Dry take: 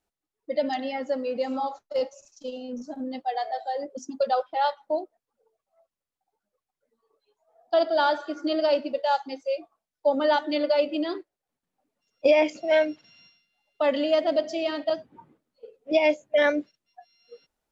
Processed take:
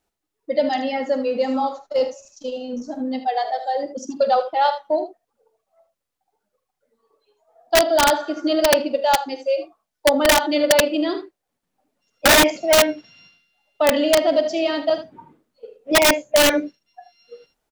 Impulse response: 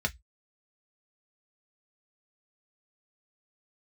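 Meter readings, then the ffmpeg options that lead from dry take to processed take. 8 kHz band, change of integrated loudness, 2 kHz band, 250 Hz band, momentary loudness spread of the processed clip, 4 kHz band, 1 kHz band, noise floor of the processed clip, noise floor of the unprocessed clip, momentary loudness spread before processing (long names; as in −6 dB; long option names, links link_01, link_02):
can't be measured, +7.0 dB, +9.5 dB, +6.5 dB, 12 LU, +12.5 dB, +6.5 dB, −81 dBFS, below −85 dBFS, 12 LU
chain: -af "acontrast=55,aecho=1:1:46|77:0.2|0.282,aeval=exprs='(mod(2.51*val(0)+1,2)-1)/2.51':channel_layout=same"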